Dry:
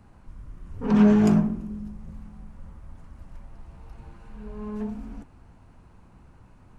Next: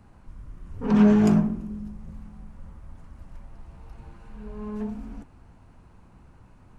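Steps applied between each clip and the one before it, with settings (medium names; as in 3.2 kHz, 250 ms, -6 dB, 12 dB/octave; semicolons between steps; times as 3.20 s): no audible change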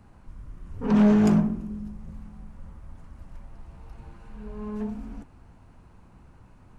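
hard clipper -14 dBFS, distortion -17 dB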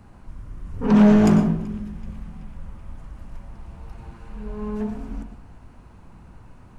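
band-passed feedback delay 380 ms, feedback 73%, band-pass 2.7 kHz, level -21.5 dB; on a send at -9 dB: reverberation RT60 0.40 s, pre-delay 94 ms; on the sum: trim +5 dB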